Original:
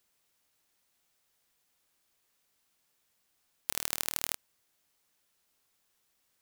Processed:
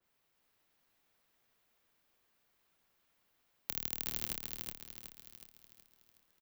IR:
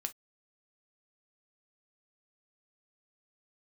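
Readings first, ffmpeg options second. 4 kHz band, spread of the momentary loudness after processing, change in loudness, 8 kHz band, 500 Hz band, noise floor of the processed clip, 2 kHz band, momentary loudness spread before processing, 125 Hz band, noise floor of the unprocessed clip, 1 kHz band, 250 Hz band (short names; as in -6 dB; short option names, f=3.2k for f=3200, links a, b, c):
-5.5 dB, 17 LU, -6.0 dB, -9.0 dB, -5.0 dB, -78 dBFS, -7.5 dB, 8 LU, +3.0 dB, -76 dBFS, -9.0 dB, +1.0 dB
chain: -filter_complex "[0:a]equalizer=f=9k:t=o:w=1.9:g=-11.5,acrossover=split=390|3000[a][b][c];[b]acompressor=threshold=-53dB:ratio=6[d];[a][d][c]amix=inputs=3:normalize=0,afreqshift=-22,asplit=2[e][f];[f]aecho=0:1:370|740|1110|1480|1850|2220:0.708|0.311|0.137|0.0603|0.0265|0.0117[g];[e][g]amix=inputs=2:normalize=0,adynamicequalizer=threshold=0.00141:dfrequency=2900:dqfactor=0.7:tfrequency=2900:tqfactor=0.7:attack=5:release=100:ratio=0.375:range=1.5:mode=cutabove:tftype=highshelf,volume=1dB"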